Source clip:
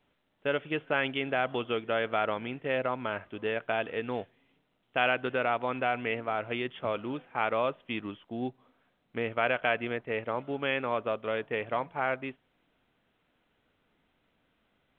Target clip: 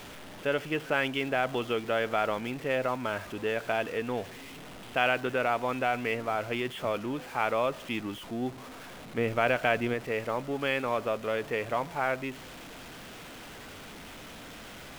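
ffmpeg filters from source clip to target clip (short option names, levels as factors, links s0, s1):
-filter_complex "[0:a]aeval=exprs='val(0)+0.5*0.0106*sgn(val(0))':c=same,asettb=1/sr,asplit=3[s0][s1][s2];[s0]atrim=end=9.184[s3];[s1]atrim=start=9.18:end=9.94,asetpts=PTS-STARTPTS,afade=t=in:d=0.004:c=qsin,afade=t=out:st=0.756:d=0.004:c=qsin,lowshelf=f=400:g=5.5[s4];[s2]atrim=start=9.936[s5];[s3][s4]acrossfade=d=0.004:c1=hsin:c2=qsin[s6];[s6][s5]acrossfade=d=0.004:c1=qsin:c2=hsin"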